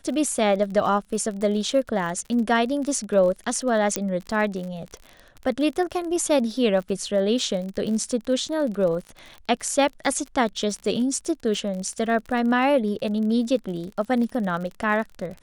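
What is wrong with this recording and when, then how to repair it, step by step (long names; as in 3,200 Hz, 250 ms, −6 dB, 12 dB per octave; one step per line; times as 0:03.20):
surface crackle 43 per second −31 dBFS
0:03.96: click −7 dBFS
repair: click removal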